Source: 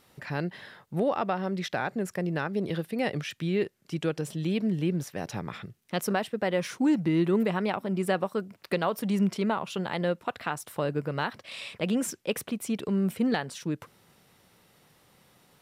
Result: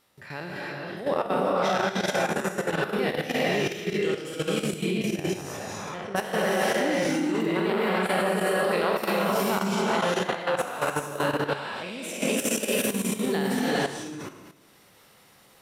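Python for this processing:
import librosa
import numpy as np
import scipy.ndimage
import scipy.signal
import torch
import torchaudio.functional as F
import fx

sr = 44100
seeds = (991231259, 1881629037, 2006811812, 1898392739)

y = fx.spec_trails(x, sr, decay_s=1.08)
y = fx.lowpass(y, sr, hz=2100.0, slope=12, at=(5.58, 6.15), fade=0.02)
y = fx.rev_gated(y, sr, seeds[0], gate_ms=470, shape='rising', drr_db=-5.0)
y = fx.level_steps(y, sr, step_db=11)
y = fx.low_shelf(y, sr, hz=330.0, db=-6.5)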